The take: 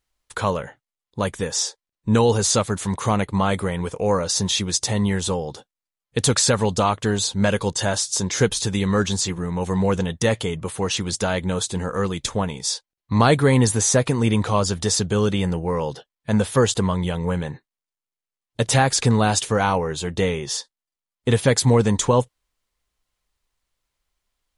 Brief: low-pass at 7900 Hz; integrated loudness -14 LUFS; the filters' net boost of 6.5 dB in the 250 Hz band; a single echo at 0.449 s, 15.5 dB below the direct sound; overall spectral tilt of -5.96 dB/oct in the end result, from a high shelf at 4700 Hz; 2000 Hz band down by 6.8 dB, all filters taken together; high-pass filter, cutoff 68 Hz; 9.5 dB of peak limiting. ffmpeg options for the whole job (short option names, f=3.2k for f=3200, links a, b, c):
-af "highpass=68,lowpass=7.9k,equalizer=f=250:t=o:g=8.5,equalizer=f=2k:t=o:g=-8.5,highshelf=f=4.7k:g=-6,alimiter=limit=-9dB:level=0:latency=1,aecho=1:1:449:0.168,volume=7.5dB"